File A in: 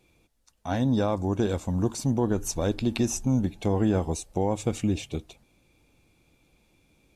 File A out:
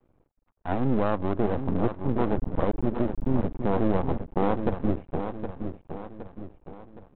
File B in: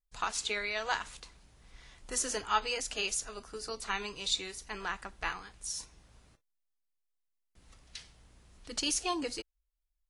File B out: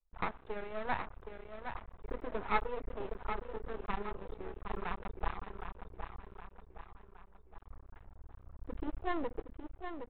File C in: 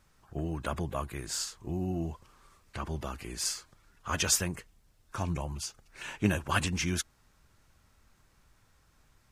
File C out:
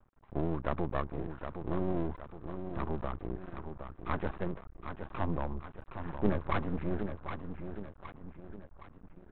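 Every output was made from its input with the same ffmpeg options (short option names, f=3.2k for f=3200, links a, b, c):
-af "lowpass=f=1.2k:w=0.5412,lowpass=f=1.2k:w=1.3066,asubboost=boost=3.5:cutoff=54,aecho=1:1:766|1532|2298|3064|3830:0.398|0.183|0.0842|0.0388|0.0178,aresample=8000,aeval=exprs='max(val(0),0)':c=same,aresample=44100,volume=4.5dB"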